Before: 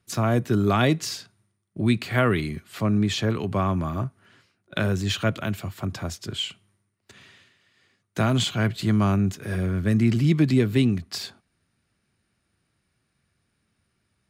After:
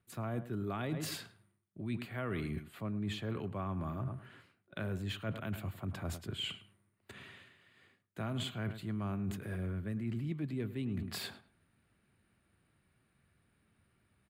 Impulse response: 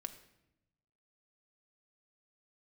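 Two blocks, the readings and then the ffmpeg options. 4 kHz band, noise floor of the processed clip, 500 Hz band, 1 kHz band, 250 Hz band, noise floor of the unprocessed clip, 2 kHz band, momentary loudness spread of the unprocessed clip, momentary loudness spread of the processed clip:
-13.0 dB, -77 dBFS, -15.5 dB, -15.5 dB, -15.5 dB, -75 dBFS, -15.0 dB, 12 LU, 14 LU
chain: -filter_complex "[0:a]equalizer=f=5700:t=o:w=0.82:g=-14.5,asplit=2[s0][s1];[s1]adelay=106,lowpass=f=2900:p=1,volume=0.178,asplit=2[s2][s3];[s3]adelay=106,lowpass=f=2900:p=1,volume=0.21[s4];[s0][s2][s4]amix=inputs=3:normalize=0,areverse,acompressor=threshold=0.0141:ratio=5,areverse"

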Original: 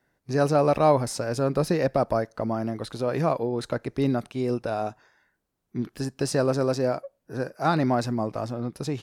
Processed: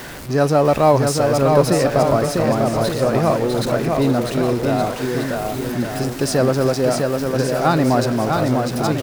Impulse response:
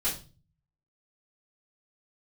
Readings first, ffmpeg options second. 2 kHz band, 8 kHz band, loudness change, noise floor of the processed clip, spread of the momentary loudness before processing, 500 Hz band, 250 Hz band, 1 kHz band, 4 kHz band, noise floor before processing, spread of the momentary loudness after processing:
+9.5 dB, +11.0 dB, +8.0 dB, -27 dBFS, 11 LU, +8.5 dB, +8.5 dB, +8.0 dB, +11.0 dB, -77 dBFS, 7 LU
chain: -filter_complex "[0:a]aeval=exprs='val(0)+0.5*0.0237*sgn(val(0))':c=same,asplit=2[s0][s1];[s1]aecho=0:1:650|1170|1586|1919|2185:0.631|0.398|0.251|0.158|0.1[s2];[s0][s2]amix=inputs=2:normalize=0,volume=1.78"

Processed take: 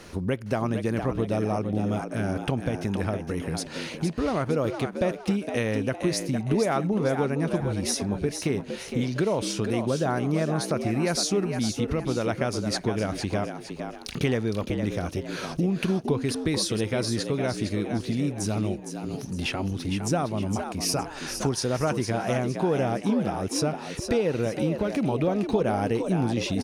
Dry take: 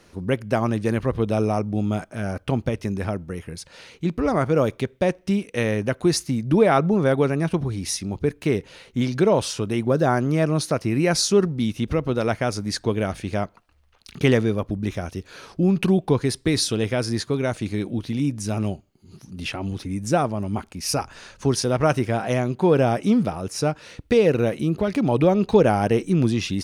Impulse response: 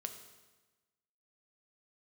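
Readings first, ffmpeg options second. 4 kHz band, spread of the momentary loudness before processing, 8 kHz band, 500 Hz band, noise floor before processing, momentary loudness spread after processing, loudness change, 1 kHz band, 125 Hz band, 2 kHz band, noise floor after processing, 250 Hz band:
-2.5 dB, 10 LU, -2.0 dB, -5.0 dB, -56 dBFS, 5 LU, -4.5 dB, -4.5 dB, -4.0 dB, -3.5 dB, -39 dBFS, -4.0 dB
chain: -filter_complex "[0:a]acompressor=threshold=0.0126:ratio=2.5,asplit=2[s0][s1];[s1]asplit=4[s2][s3][s4][s5];[s2]adelay=461,afreqshift=72,volume=0.422[s6];[s3]adelay=922,afreqshift=144,volume=0.157[s7];[s4]adelay=1383,afreqshift=216,volume=0.0575[s8];[s5]adelay=1844,afreqshift=288,volume=0.0214[s9];[s6][s7][s8][s9]amix=inputs=4:normalize=0[s10];[s0][s10]amix=inputs=2:normalize=0,volume=2.51"

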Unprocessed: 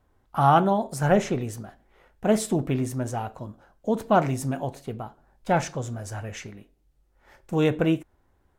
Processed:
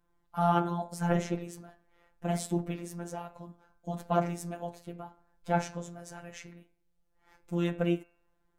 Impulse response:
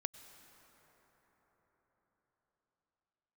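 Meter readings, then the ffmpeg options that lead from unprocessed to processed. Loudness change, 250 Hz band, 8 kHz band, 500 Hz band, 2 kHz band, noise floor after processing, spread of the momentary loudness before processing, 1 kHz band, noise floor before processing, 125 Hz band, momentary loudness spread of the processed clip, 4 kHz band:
-7.5 dB, -7.0 dB, -8.0 dB, -9.0 dB, -8.5 dB, -73 dBFS, 18 LU, -8.5 dB, -66 dBFS, -7.0 dB, 17 LU, -7.5 dB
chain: -af "flanger=delay=0.8:depth=6.3:regen=-62:speed=0.27:shape=sinusoidal,bandreject=f=91.02:t=h:w=4,bandreject=f=182.04:t=h:w=4,bandreject=f=273.06:t=h:w=4,bandreject=f=364.08:t=h:w=4,bandreject=f=455.1:t=h:w=4,bandreject=f=546.12:t=h:w=4,bandreject=f=637.14:t=h:w=4,bandreject=f=728.16:t=h:w=4,bandreject=f=819.18:t=h:w=4,bandreject=f=910.2:t=h:w=4,bandreject=f=1001.22:t=h:w=4,bandreject=f=1092.24:t=h:w=4,bandreject=f=1183.26:t=h:w=4,bandreject=f=1274.28:t=h:w=4,bandreject=f=1365.3:t=h:w=4,bandreject=f=1456.32:t=h:w=4,bandreject=f=1547.34:t=h:w=4,bandreject=f=1638.36:t=h:w=4,bandreject=f=1729.38:t=h:w=4,bandreject=f=1820.4:t=h:w=4,bandreject=f=1911.42:t=h:w=4,bandreject=f=2002.44:t=h:w=4,bandreject=f=2093.46:t=h:w=4,bandreject=f=2184.48:t=h:w=4,bandreject=f=2275.5:t=h:w=4,bandreject=f=2366.52:t=h:w=4,bandreject=f=2457.54:t=h:w=4,bandreject=f=2548.56:t=h:w=4,bandreject=f=2639.58:t=h:w=4,bandreject=f=2730.6:t=h:w=4,bandreject=f=2821.62:t=h:w=4,afftfilt=real='hypot(re,im)*cos(PI*b)':imag='0':win_size=1024:overlap=0.75"

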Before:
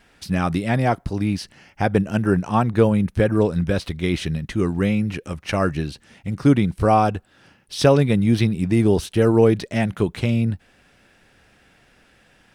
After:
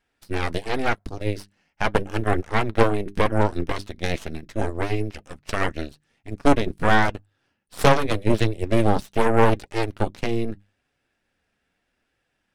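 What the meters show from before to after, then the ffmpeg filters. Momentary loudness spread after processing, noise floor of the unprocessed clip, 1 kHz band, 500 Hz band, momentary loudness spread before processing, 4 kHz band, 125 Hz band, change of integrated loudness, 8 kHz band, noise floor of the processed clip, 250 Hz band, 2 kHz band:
13 LU, -57 dBFS, 0.0 dB, -3.0 dB, 10 LU, -0.5 dB, -6.5 dB, -3.5 dB, -2.5 dB, -75 dBFS, -6.5 dB, +3.0 dB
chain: -af "bandreject=f=50:t=h:w=6,bandreject=f=100:t=h:w=6,bandreject=f=150:t=h:w=6,bandreject=f=200:t=h:w=6,aeval=exprs='0.708*(cos(1*acos(clip(val(0)/0.708,-1,1)))-cos(1*PI/2))+0.2*(cos(3*acos(clip(val(0)/0.708,-1,1)))-cos(3*PI/2))+0.141*(cos(6*acos(clip(val(0)/0.708,-1,1)))-cos(6*PI/2))+0.00447*(cos(7*acos(clip(val(0)/0.708,-1,1)))-cos(7*PI/2))':c=same,flanger=delay=2.2:depth=2.6:regen=-63:speed=0.82:shape=triangular,volume=1.78"

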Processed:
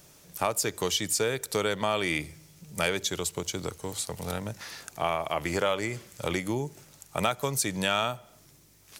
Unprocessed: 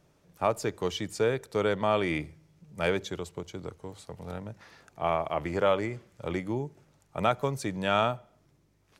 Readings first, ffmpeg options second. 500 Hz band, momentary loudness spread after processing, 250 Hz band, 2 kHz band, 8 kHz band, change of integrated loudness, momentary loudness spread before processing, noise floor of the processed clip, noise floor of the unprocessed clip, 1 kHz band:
-1.5 dB, 11 LU, -0.5 dB, +3.5 dB, +15.0 dB, +0.5 dB, 16 LU, -57 dBFS, -67 dBFS, -0.5 dB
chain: -af "crystalizer=i=5.5:c=0,acompressor=threshold=0.0251:ratio=2.5,volume=1.78"

